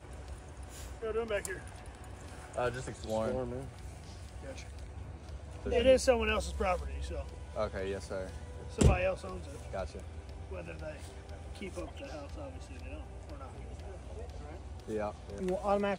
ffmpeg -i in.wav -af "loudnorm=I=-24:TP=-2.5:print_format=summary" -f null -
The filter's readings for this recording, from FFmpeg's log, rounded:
Input Integrated:    -36.3 LUFS
Input True Peak:     -10.7 dBTP
Input LRA:            11.8 LU
Input Threshold:     -47.0 LUFS